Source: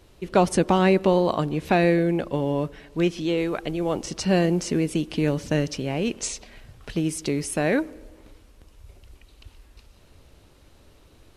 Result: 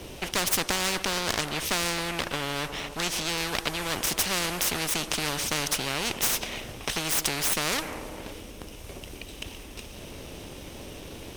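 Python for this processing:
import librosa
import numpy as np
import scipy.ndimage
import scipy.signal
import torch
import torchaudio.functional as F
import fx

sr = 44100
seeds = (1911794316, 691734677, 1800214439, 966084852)

y = fx.lower_of_two(x, sr, delay_ms=0.33)
y = fx.spectral_comp(y, sr, ratio=4.0)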